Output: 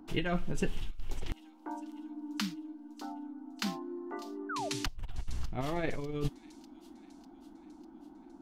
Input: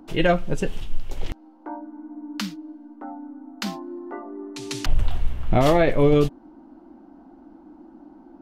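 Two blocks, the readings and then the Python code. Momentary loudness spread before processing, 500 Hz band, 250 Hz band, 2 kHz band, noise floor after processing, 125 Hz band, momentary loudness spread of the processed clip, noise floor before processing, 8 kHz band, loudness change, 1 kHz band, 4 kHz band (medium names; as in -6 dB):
20 LU, -17.0 dB, -11.0 dB, -10.5 dB, -55 dBFS, -12.5 dB, 18 LU, -50 dBFS, -6.0 dB, -14.5 dB, -12.0 dB, -7.5 dB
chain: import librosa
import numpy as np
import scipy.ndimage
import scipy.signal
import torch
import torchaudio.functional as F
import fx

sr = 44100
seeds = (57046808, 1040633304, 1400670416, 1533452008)

p1 = fx.peak_eq(x, sr, hz=560.0, db=-8.0, octaves=0.45)
p2 = fx.over_compress(p1, sr, threshold_db=-21.0, ratio=-0.5)
p3 = fx.spec_paint(p2, sr, seeds[0], shape='fall', start_s=4.49, length_s=0.2, low_hz=570.0, high_hz=1600.0, level_db=-28.0)
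p4 = p3 + fx.echo_wet_highpass(p3, sr, ms=598, feedback_pct=58, hz=4100.0, wet_db=-13, dry=0)
y = p4 * librosa.db_to_amplitude(-9.0)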